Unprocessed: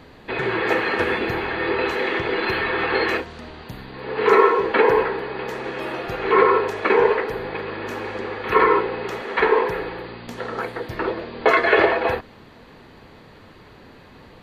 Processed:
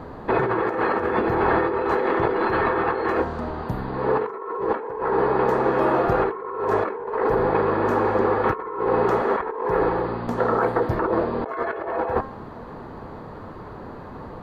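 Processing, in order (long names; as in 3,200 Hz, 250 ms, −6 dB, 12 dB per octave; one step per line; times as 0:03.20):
high shelf with overshoot 1,700 Hz −13 dB, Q 1.5
hum removal 267.2 Hz, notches 34
compressor whose output falls as the input rises −27 dBFS, ratio −1
level +3.5 dB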